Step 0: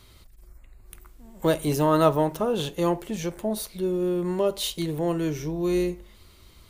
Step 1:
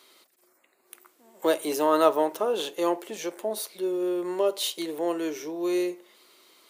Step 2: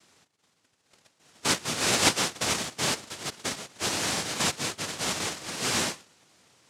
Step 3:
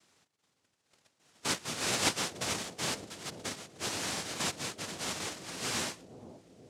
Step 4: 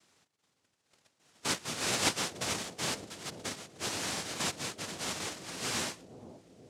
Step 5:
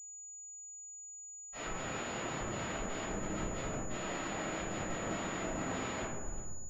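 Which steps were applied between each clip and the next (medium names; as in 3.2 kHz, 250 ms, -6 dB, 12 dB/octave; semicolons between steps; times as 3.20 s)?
high-pass 320 Hz 24 dB/octave
dynamic bell 3.1 kHz, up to +4 dB, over -44 dBFS, Q 1.9; noise-vocoded speech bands 1; tilt shelf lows +4 dB, about 640 Hz
bucket-brigade echo 479 ms, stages 2048, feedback 61%, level -9.5 dB; trim -7 dB
no audible change
Schmitt trigger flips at -41.5 dBFS; reverberation RT60 1.4 s, pre-delay 78 ms; class-D stage that switches slowly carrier 6.9 kHz; trim +9.5 dB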